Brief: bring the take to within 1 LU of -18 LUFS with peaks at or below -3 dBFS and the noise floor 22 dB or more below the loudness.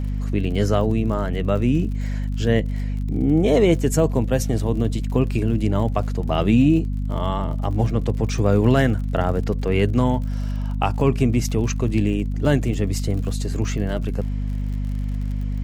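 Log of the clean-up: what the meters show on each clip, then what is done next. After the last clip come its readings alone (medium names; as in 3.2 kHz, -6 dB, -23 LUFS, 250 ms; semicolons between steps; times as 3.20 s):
tick rate 48 per s; hum 50 Hz; highest harmonic 250 Hz; hum level -22 dBFS; loudness -21.5 LUFS; peak level -5.0 dBFS; loudness target -18.0 LUFS
-> de-click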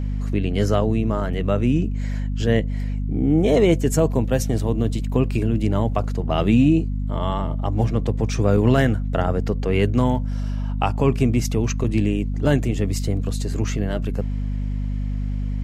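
tick rate 0.064 per s; hum 50 Hz; highest harmonic 250 Hz; hum level -22 dBFS
-> de-hum 50 Hz, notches 5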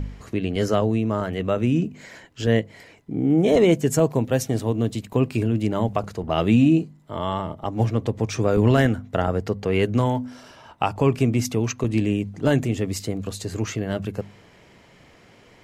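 hum not found; loudness -22.5 LUFS; peak level -6.0 dBFS; loudness target -18.0 LUFS
-> trim +4.5 dB; peak limiter -3 dBFS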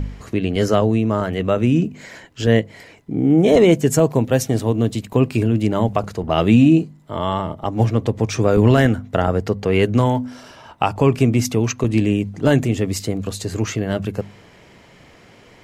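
loudness -18.5 LUFS; peak level -3.0 dBFS; noise floor -48 dBFS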